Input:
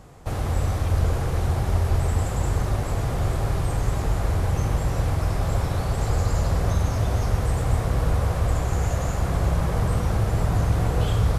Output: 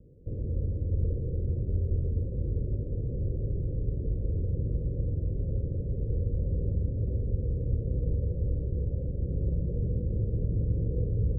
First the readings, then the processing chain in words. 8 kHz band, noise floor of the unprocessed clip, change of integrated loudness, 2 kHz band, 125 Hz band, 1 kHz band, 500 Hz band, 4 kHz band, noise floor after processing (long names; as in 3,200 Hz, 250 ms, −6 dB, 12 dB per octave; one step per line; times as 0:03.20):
below −40 dB, −27 dBFS, −7.0 dB, below −40 dB, −6.5 dB, below −40 dB, −9.0 dB, below −40 dB, −35 dBFS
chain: Butterworth low-pass 530 Hz 72 dB per octave
level −6.5 dB